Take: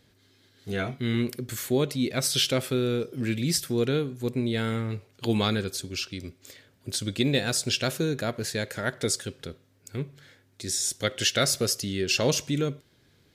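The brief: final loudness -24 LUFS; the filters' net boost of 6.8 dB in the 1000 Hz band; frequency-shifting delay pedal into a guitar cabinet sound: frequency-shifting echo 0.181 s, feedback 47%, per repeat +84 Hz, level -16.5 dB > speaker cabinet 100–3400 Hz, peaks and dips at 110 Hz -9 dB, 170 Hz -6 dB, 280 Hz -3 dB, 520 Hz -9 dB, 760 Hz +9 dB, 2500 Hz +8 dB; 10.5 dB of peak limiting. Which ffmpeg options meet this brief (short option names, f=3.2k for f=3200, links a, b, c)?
-filter_complex "[0:a]equalizer=f=1k:t=o:g=5.5,alimiter=limit=-19dB:level=0:latency=1,asplit=5[a][b][c][d][e];[b]adelay=181,afreqshift=84,volume=-16.5dB[f];[c]adelay=362,afreqshift=168,volume=-23.1dB[g];[d]adelay=543,afreqshift=252,volume=-29.6dB[h];[e]adelay=724,afreqshift=336,volume=-36.2dB[i];[a][f][g][h][i]amix=inputs=5:normalize=0,highpass=100,equalizer=f=110:t=q:w=4:g=-9,equalizer=f=170:t=q:w=4:g=-6,equalizer=f=280:t=q:w=4:g=-3,equalizer=f=520:t=q:w=4:g=-9,equalizer=f=760:t=q:w=4:g=9,equalizer=f=2.5k:t=q:w=4:g=8,lowpass=f=3.4k:w=0.5412,lowpass=f=3.4k:w=1.3066,volume=8.5dB"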